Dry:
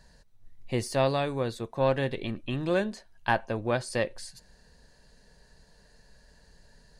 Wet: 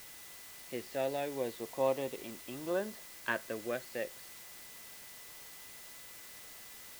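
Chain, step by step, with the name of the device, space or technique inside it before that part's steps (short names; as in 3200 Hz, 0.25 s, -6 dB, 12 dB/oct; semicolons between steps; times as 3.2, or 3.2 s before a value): shortwave radio (BPF 290–2800 Hz; tremolo 0.62 Hz, depth 40%; LFO notch saw up 0.32 Hz 730–2500 Hz; whine 2000 Hz -57 dBFS; white noise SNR 11 dB); gain -3.5 dB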